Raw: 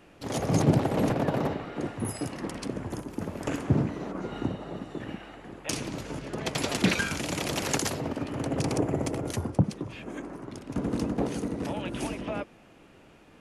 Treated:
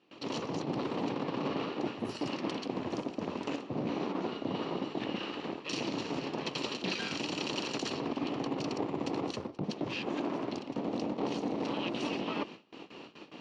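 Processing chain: comb filter that takes the minimum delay 0.7 ms; gate with hold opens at -46 dBFS; reverse; compression 8:1, threshold -38 dBFS, peak gain reduction 20.5 dB; reverse; high-pass 290 Hz 12 dB/octave; in parallel at -1 dB: peak limiter -37 dBFS, peak gain reduction 11 dB; on the sum: low-pass 4.9 kHz 24 dB/octave; peaking EQ 1.5 kHz -13.5 dB 0.64 oct; trim +7.5 dB

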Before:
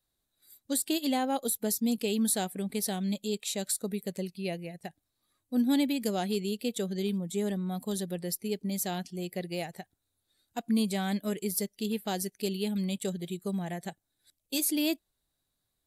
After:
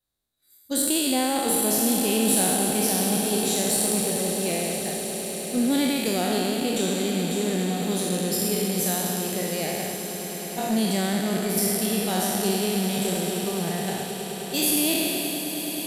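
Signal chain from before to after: spectral sustain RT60 2.41 s; gate -35 dBFS, range -7 dB; in parallel at -6.5 dB: one-sided clip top -30 dBFS; on the sum: echo with a slow build-up 104 ms, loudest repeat 8, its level -15 dB; trim -1 dB

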